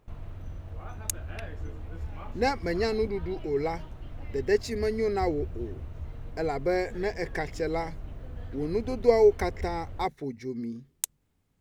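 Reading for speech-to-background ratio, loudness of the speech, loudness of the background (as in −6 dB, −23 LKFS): 12.5 dB, −29.5 LKFS, −42.0 LKFS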